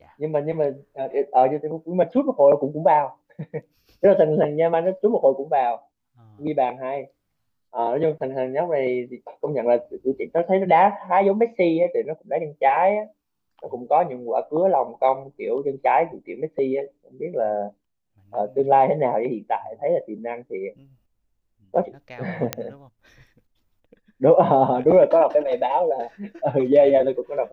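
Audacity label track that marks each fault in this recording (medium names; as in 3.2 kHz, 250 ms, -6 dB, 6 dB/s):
22.530000	22.530000	pop -7 dBFS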